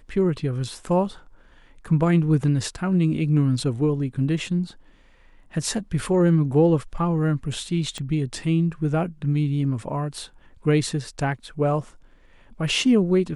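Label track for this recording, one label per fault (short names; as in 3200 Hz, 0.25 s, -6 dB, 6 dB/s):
7.980000	7.980000	pop -19 dBFS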